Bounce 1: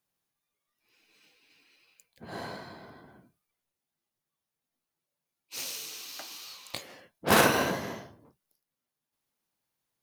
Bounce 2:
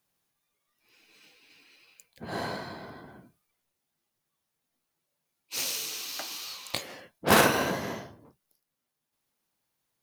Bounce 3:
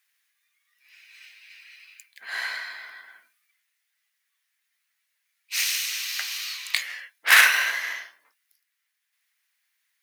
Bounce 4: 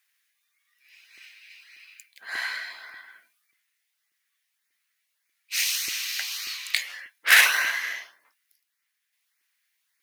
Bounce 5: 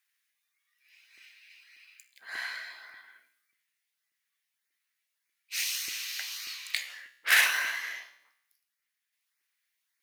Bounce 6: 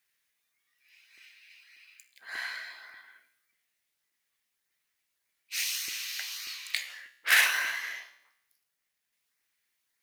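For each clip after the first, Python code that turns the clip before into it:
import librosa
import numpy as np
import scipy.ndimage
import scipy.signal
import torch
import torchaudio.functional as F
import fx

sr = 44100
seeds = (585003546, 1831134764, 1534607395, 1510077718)

y1 = fx.rider(x, sr, range_db=4, speed_s=0.5)
y1 = y1 * 10.0 ** (1.5 / 20.0)
y2 = fx.highpass_res(y1, sr, hz=1900.0, q=3.3)
y2 = y2 * 10.0 ** (4.5 / 20.0)
y3 = fx.filter_lfo_notch(y2, sr, shape='saw_up', hz=1.7, low_hz=330.0, high_hz=3600.0, q=2.7)
y4 = fx.comb_fb(y3, sr, f0_hz=64.0, decay_s=0.77, harmonics='all', damping=0.0, mix_pct=60)
y5 = fx.quant_companded(y4, sr, bits=8)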